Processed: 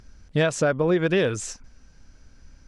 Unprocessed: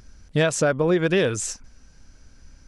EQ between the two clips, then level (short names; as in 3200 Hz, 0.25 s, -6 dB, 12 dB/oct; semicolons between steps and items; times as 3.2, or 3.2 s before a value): high shelf 8400 Hz -10.5 dB; -1.0 dB